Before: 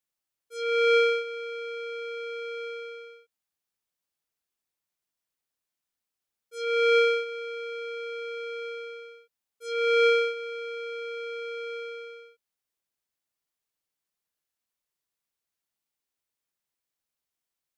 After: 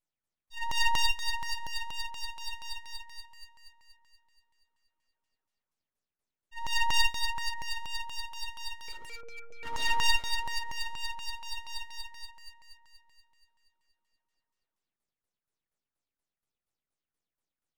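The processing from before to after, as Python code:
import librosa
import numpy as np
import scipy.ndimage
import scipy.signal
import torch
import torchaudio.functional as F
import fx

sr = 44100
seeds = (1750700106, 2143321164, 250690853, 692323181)

y = fx.delta_hold(x, sr, step_db=-35.0, at=(8.88, 9.91))
y = fx.echo_alternate(y, sr, ms=136, hz=1400.0, feedback_pct=75, wet_db=-6.5)
y = fx.filter_lfo_lowpass(y, sr, shape='saw_down', hz=4.2, low_hz=580.0, high_hz=6300.0, q=5.3)
y = np.abs(y)
y = F.gain(torch.from_numpy(y), -4.0).numpy()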